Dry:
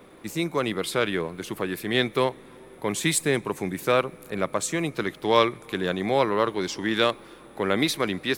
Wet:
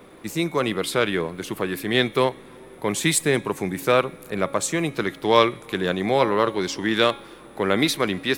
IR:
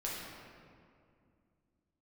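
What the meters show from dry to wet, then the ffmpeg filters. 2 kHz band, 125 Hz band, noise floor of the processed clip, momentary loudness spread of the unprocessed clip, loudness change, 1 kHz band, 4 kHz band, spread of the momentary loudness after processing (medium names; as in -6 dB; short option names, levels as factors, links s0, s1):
+3.0 dB, +3.0 dB, -45 dBFS, 8 LU, +3.0 dB, +3.0 dB, +3.0 dB, 8 LU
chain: -af "bandreject=f=276.8:t=h:w=4,bandreject=f=553.6:t=h:w=4,bandreject=f=830.4:t=h:w=4,bandreject=f=1107.2:t=h:w=4,bandreject=f=1384:t=h:w=4,bandreject=f=1660.8:t=h:w=4,bandreject=f=1937.6:t=h:w=4,bandreject=f=2214.4:t=h:w=4,bandreject=f=2491.2:t=h:w=4,bandreject=f=2768:t=h:w=4,bandreject=f=3044.8:t=h:w=4,bandreject=f=3321.6:t=h:w=4,bandreject=f=3598.4:t=h:w=4,bandreject=f=3875.2:t=h:w=4,bandreject=f=4152:t=h:w=4,volume=1.41"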